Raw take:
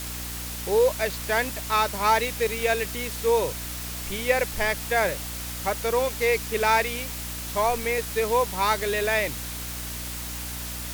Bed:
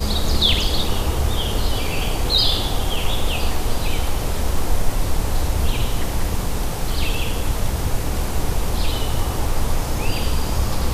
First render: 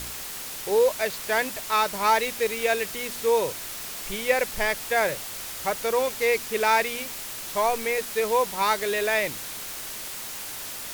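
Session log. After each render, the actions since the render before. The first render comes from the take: de-hum 60 Hz, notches 5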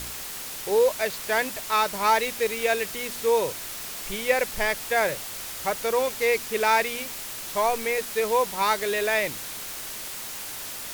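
no audible change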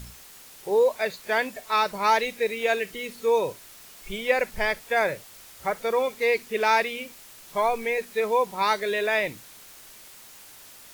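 noise print and reduce 12 dB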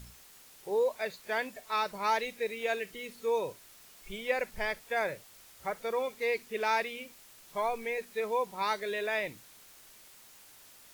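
trim -8 dB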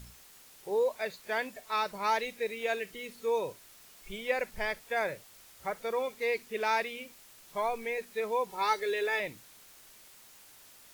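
8.49–9.20 s: comb 2.3 ms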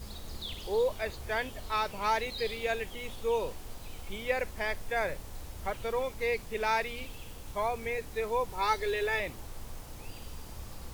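add bed -23.5 dB

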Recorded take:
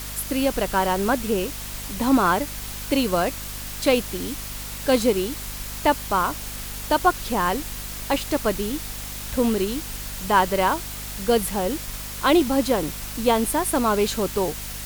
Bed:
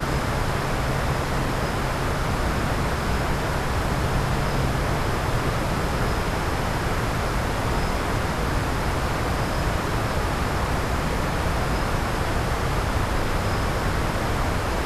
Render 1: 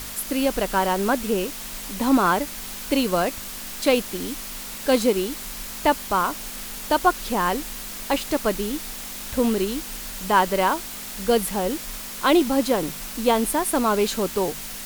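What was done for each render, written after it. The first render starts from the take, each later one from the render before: de-hum 50 Hz, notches 3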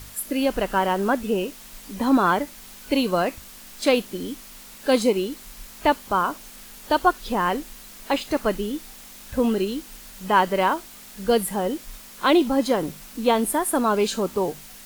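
noise print and reduce 9 dB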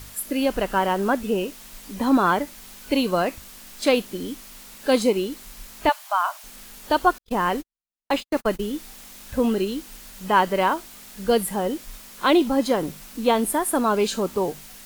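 5.89–6.44 s: brick-wall FIR high-pass 580 Hz; 7.18–8.73 s: gate -31 dBFS, range -57 dB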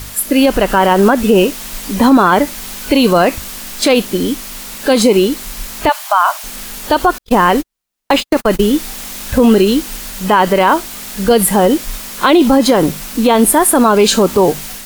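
level rider gain up to 4 dB; loudness maximiser +12.5 dB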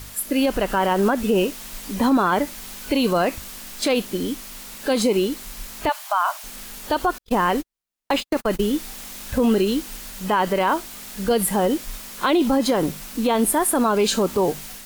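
trim -9.5 dB

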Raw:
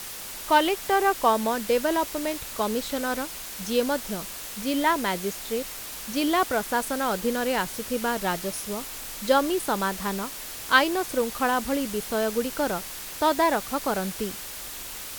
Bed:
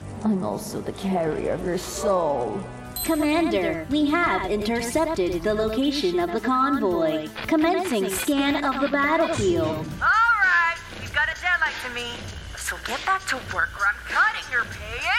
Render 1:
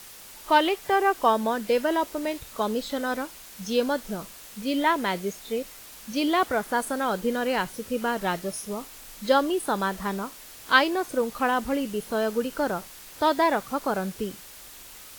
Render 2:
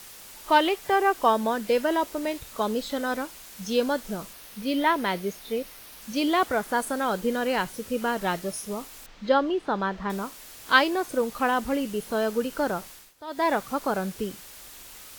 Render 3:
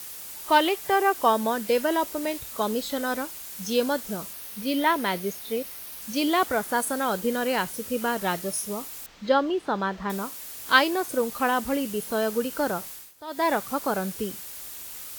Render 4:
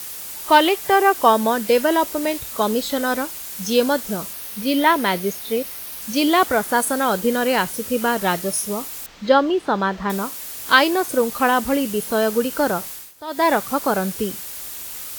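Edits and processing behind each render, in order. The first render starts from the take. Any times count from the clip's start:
noise print and reduce 8 dB
4.33–6.02 s: peaking EQ 7.4 kHz -8 dB 0.35 oct; 9.06–10.10 s: distance through air 190 m; 12.90–13.51 s: dip -18 dB, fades 0.24 s
high-pass 41 Hz; treble shelf 8 kHz +9.5 dB
trim +6.5 dB; peak limiter -1 dBFS, peak gain reduction 3 dB

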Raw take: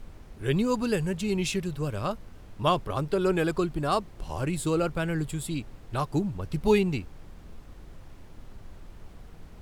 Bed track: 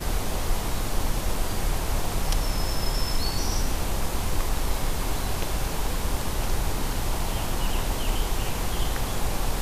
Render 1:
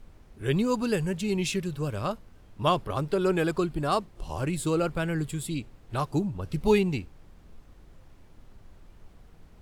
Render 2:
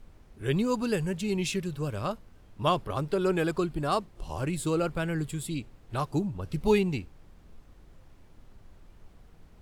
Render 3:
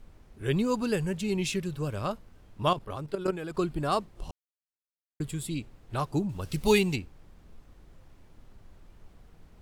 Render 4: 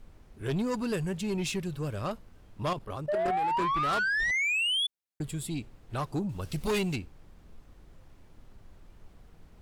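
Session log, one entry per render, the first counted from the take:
noise print and reduce 6 dB
trim -1.5 dB
2.73–3.57 s: level held to a coarse grid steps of 12 dB; 4.31–5.20 s: mute; 6.29–6.96 s: treble shelf 2.4 kHz +11.5 dB
3.08–4.87 s: painted sound rise 580–3500 Hz -25 dBFS; saturation -24.5 dBFS, distortion -11 dB

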